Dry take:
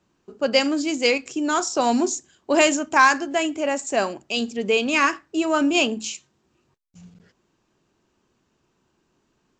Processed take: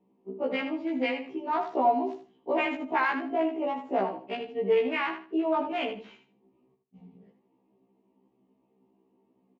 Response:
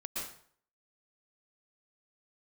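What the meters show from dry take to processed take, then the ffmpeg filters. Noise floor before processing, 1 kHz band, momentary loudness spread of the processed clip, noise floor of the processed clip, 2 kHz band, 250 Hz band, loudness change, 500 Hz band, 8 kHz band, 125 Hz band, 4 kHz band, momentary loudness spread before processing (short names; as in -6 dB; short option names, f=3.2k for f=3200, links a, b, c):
-70 dBFS, -6.0 dB, 10 LU, -71 dBFS, -11.0 dB, -8.0 dB, -7.5 dB, -5.5 dB, under -40 dB, n/a, -15.5 dB, 9 LU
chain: -filter_complex "[0:a]equalizer=f=210:t=o:w=0.25:g=6.5,aecho=1:1:4.3:0.31,acrossover=split=570|1100[a][b][c];[a]acompressor=threshold=-32dB:ratio=6[d];[c]aeval=exprs='0.447*(cos(1*acos(clip(val(0)/0.447,-1,1)))-cos(1*PI/2))+0.0708*(cos(2*acos(clip(val(0)/0.447,-1,1)))-cos(2*PI/2))+0.0224*(cos(5*acos(clip(val(0)/0.447,-1,1)))-cos(5*PI/2))+0.1*(cos(7*acos(clip(val(0)/0.447,-1,1)))-cos(7*PI/2))':c=same[e];[d][b][e]amix=inputs=3:normalize=0,alimiter=limit=-15dB:level=0:latency=1:release=67,highpass=160,equalizer=f=260:t=q:w=4:g=4,equalizer=f=380:t=q:w=4:g=6,equalizer=f=860:t=q:w=4:g=5,equalizer=f=2.1k:t=q:w=4:g=4,lowpass=f=2.9k:w=0.5412,lowpass=f=2.9k:w=1.3066,aecho=1:1:78|156|234:0.355|0.0816|0.0188,afftfilt=real='re*1.73*eq(mod(b,3),0)':imag='im*1.73*eq(mod(b,3),0)':win_size=2048:overlap=0.75"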